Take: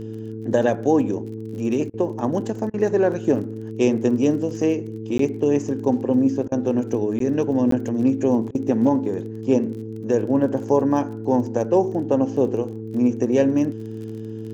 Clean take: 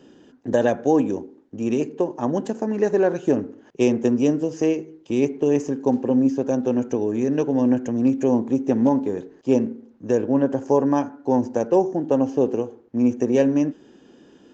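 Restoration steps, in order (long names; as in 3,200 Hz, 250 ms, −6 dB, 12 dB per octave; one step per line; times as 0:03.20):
click removal
hum removal 110.3 Hz, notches 4
repair the gap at 0:05.18/0:07.19/0:07.71, 13 ms
repair the gap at 0:01.90/0:02.70/0:06.48/0:08.51, 37 ms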